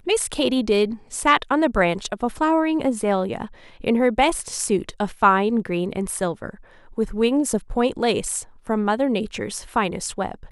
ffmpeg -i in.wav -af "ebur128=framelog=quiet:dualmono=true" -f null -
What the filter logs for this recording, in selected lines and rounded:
Integrated loudness:
  I:         -18.9 LUFS
  Threshold: -29.2 LUFS
Loudness range:
  LRA:         2.8 LU
  Threshold: -39.1 LUFS
  LRA low:   -20.6 LUFS
  LRA high:  -17.8 LUFS